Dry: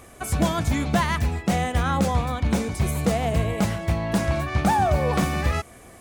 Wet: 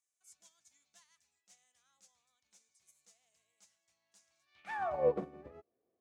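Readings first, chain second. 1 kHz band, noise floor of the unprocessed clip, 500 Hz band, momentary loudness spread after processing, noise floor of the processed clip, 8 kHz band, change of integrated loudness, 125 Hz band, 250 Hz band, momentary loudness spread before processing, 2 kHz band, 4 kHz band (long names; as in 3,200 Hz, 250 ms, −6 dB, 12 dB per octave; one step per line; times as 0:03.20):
−20.0 dB, −47 dBFS, −12.0 dB, 22 LU, below −85 dBFS, −27.5 dB, −12.0 dB, −35.0 dB, −28.5 dB, 4 LU, −21.5 dB, −32.5 dB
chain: band-pass filter sweep 6,600 Hz → 420 Hz, 0:04.39–0:05.11
expander for the loud parts 2.5 to 1, over −43 dBFS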